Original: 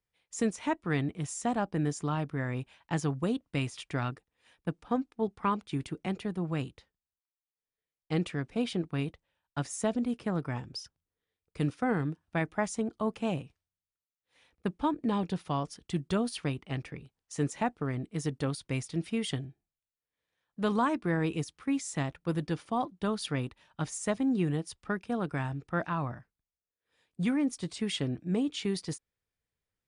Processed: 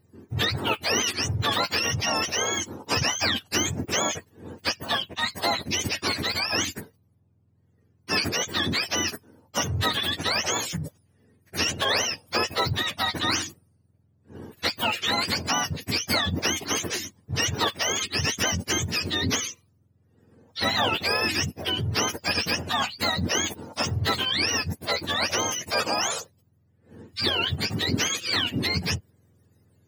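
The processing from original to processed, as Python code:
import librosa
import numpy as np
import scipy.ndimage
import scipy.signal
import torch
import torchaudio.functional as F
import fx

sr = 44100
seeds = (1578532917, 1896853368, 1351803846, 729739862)

y = fx.octave_mirror(x, sr, pivot_hz=910.0)
y = fx.spectral_comp(y, sr, ratio=2.0)
y = F.gain(torch.from_numpy(y), 6.0).numpy()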